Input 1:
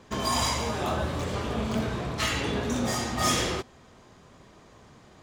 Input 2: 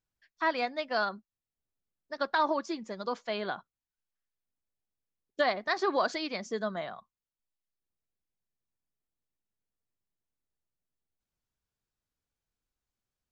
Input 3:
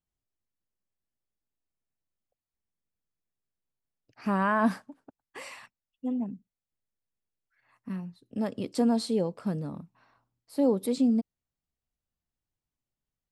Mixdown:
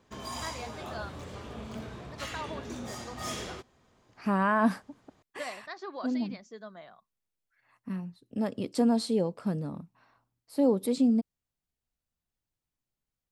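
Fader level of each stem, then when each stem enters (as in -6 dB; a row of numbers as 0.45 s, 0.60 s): -12.0 dB, -12.0 dB, 0.0 dB; 0.00 s, 0.00 s, 0.00 s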